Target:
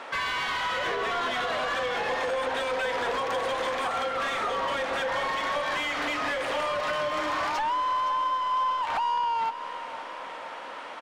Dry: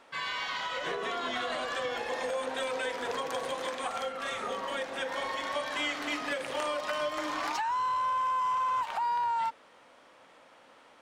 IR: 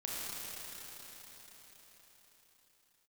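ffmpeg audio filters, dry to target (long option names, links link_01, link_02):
-filter_complex "[0:a]acompressor=threshold=-37dB:ratio=10,asplit=2[link_01][link_02];[link_02]highpass=frequency=720:poles=1,volume=19dB,asoftclip=type=tanh:threshold=-27.5dB[link_03];[link_01][link_03]amix=inputs=2:normalize=0,lowpass=frequency=2200:poles=1,volume=-6dB,aecho=1:1:516|1032|1548|2064|2580|3096:0.224|0.13|0.0753|0.0437|0.0253|0.0147,volume=7dB"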